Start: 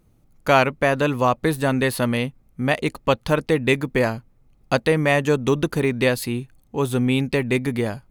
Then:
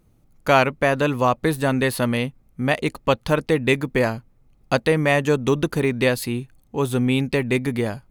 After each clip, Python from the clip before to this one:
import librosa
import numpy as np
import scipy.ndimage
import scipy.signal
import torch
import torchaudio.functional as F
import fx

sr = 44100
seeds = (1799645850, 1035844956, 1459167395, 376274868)

y = x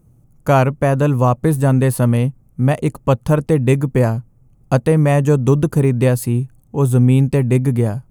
y = fx.graphic_eq_10(x, sr, hz=(125, 2000, 4000, 8000), db=(10, -7, -12, 4))
y = y * 10.0 ** (3.0 / 20.0)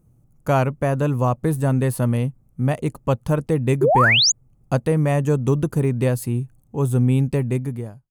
y = fx.fade_out_tail(x, sr, length_s=0.73)
y = fx.spec_paint(y, sr, seeds[0], shape='rise', start_s=3.81, length_s=0.51, low_hz=350.0, high_hz=7200.0, level_db=-10.0)
y = y * 10.0 ** (-5.5 / 20.0)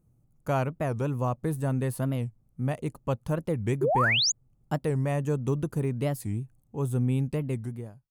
y = fx.record_warp(x, sr, rpm=45.0, depth_cents=250.0)
y = y * 10.0 ** (-8.5 / 20.0)